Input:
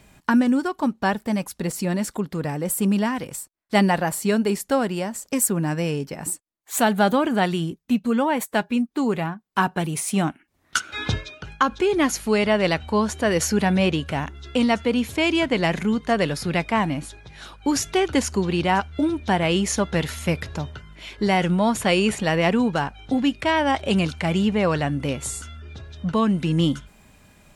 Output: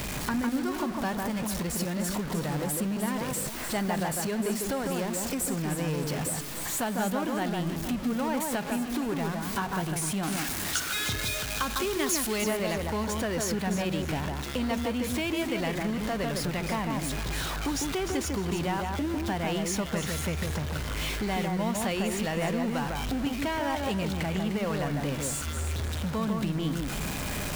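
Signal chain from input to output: jump at every zero crossing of -20.5 dBFS; 10.23–12.44 s: treble shelf 2.7 kHz +11 dB; compression 2:1, threshold -25 dBFS, peak gain reduction 9 dB; echo whose repeats swap between lows and highs 152 ms, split 1.9 kHz, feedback 53%, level -3 dB; trim -7.5 dB

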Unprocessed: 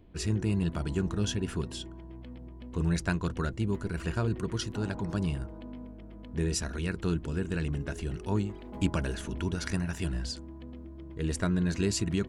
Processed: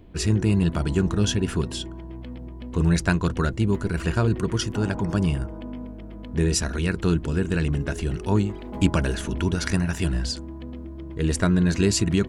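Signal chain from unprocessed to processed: 4.52–5.81 s: band-stop 4 kHz, Q 6.9; trim +8 dB

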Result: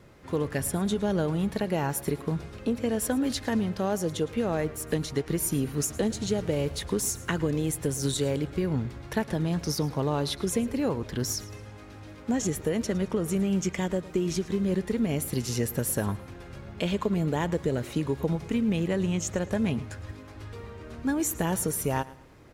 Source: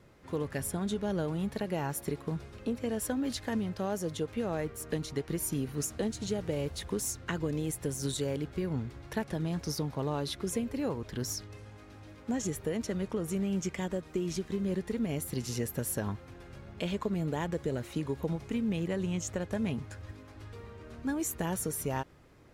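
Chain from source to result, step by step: feedback delay 110 ms, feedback 32%, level -19 dB; trim +5.5 dB

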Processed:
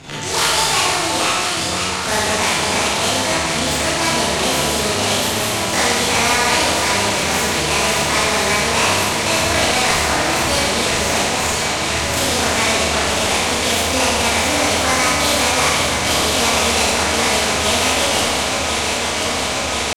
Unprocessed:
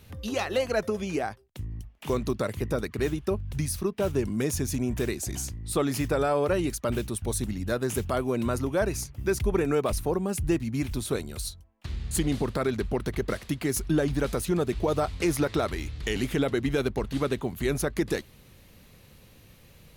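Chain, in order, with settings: median filter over 15 samples; low-pass 4.9 kHz 24 dB/octave; tilt shelf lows -8 dB, about 940 Hz; pitch shift +9 st; echo whose repeats swap between lows and highs 518 ms, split 1.5 kHz, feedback 89%, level -8 dB; Schroeder reverb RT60 0.97 s, combs from 27 ms, DRR -9.5 dB; spectrum-flattening compressor 2:1; trim +3.5 dB

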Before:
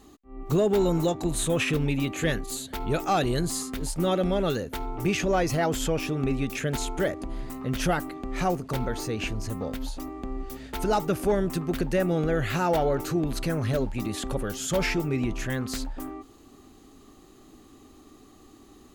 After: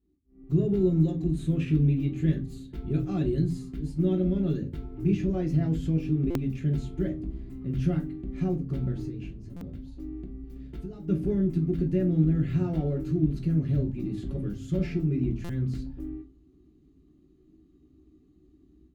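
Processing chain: companding laws mixed up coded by A; FFT filter 320 Hz 0 dB, 620 Hz -6 dB, 910 Hz -5 dB, 2.7 kHz -10 dB, 9.3 kHz -23 dB; 9.08–11.08 s: compression 12:1, threshold -35 dBFS, peak gain reduction 12.5 dB; high-pass 79 Hz 12 dB/octave; amplifier tone stack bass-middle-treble 10-0-1; reverberation RT60 0.25 s, pre-delay 3 ms, DRR 0 dB; level rider gain up to 13 dB; buffer glitch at 6.30/9.56/15.44 s, samples 256, times 8; trim +3 dB

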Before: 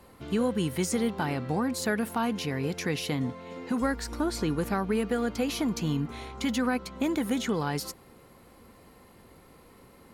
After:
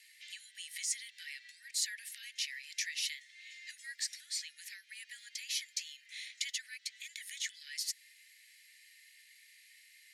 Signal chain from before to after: low-pass 8.4 kHz 12 dB/octave; peaking EQ 3.2 kHz -3.5 dB 1.2 oct; compression, threshold -31 dBFS, peak gain reduction 8.5 dB; dynamic bell 2.4 kHz, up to -5 dB, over -57 dBFS, Q 1.8; steep high-pass 1.8 kHz 96 dB/octave; trim +7 dB

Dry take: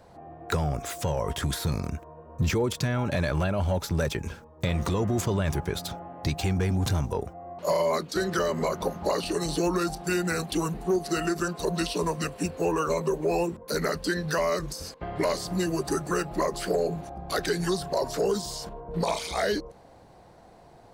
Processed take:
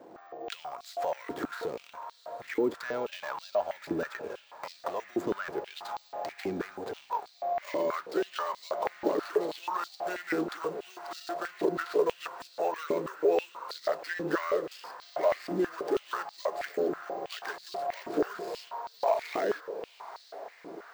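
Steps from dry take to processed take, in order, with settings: median filter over 15 samples; compression 3:1, threshold -31 dBFS, peak gain reduction 8 dB; on a send: echo that smears into a reverb 806 ms, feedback 70%, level -14 dB; on the sum: careless resampling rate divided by 2×, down filtered, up hold; step-sequenced high-pass 6.2 Hz 310–4200 Hz

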